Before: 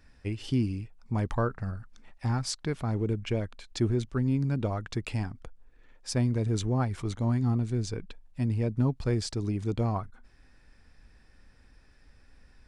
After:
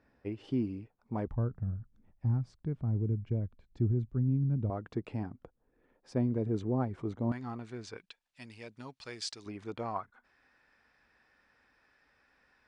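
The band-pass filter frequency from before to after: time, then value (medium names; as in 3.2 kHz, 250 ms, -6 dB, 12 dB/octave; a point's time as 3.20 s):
band-pass filter, Q 0.7
510 Hz
from 1.27 s 100 Hz
from 4.70 s 370 Hz
from 7.32 s 1.4 kHz
from 7.97 s 3.6 kHz
from 9.46 s 1.3 kHz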